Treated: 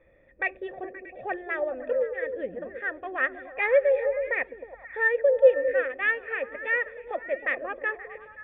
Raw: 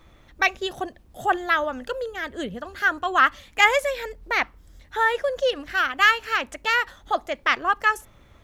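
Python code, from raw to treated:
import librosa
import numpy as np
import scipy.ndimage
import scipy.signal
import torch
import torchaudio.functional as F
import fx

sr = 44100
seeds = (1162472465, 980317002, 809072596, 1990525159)

y = fx.self_delay(x, sr, depth_ms=0.071)
y = fx.formant_cascade(y, sr, vowel='e')
y = fx.echo_stepped(y, sr, ms=105, hz=210.0, octaves=0.7, feedback_pct=70, wet_db=-3)
y = y * 10.0 ** (7.0 / 20.0)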